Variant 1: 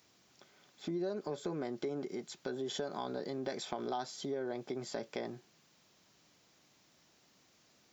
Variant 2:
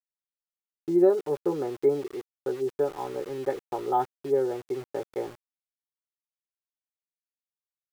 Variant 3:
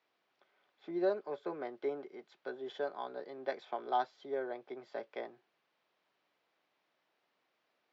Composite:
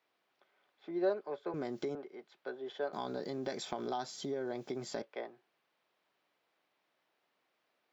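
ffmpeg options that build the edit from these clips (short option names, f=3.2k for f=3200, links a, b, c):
-filter_complex "[0:a]asplit=2[a][b];[2:a]asplit=3[c][d][e];[c]atrim=end=1.542[f];[a]atrim=start=1.538:end=1.952[g];[d]atrim=start=1.948:end=2.932[h];[b]atrim=start=2.928:end=5.022[i];[e]atrim=start=5.018[j];[f][g]acrossfade=d=0.004:c1=hsin:c2=hsin[k];[k][h]acrossfade=d=0.004:c1=hsin:c2=hsin[l];[l][i]acrossfade=d=0.004:c1=hsin:c2=hsin[m];[m][j]acrossfade=d=0.004:c1=hsin:c2=hsin"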